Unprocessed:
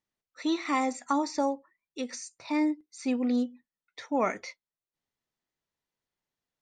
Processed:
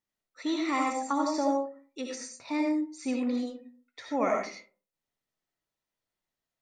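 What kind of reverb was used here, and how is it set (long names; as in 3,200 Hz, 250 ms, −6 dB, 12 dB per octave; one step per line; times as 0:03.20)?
comb and all-pass reverb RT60 0.41 s, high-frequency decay 0.45×, pre-delay 40 ms, DRR 0.5 dB
level −2.5 dB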